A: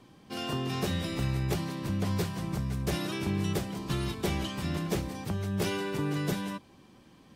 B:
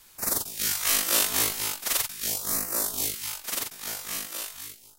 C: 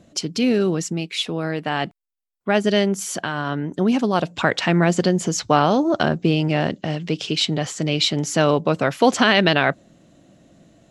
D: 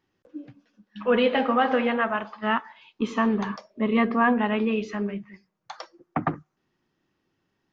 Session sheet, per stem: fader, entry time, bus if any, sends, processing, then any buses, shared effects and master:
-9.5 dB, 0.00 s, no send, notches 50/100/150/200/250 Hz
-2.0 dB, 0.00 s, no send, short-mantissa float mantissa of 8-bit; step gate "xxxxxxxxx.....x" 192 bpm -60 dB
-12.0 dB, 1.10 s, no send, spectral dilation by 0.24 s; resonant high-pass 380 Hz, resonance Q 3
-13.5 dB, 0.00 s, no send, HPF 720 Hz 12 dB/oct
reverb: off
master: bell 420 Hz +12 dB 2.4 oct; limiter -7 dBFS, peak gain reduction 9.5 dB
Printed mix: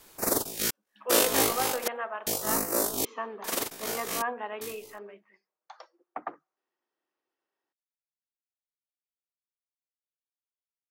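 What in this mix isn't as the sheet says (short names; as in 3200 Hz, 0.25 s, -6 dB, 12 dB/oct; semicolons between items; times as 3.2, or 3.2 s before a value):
stem A: muted; stem C: muted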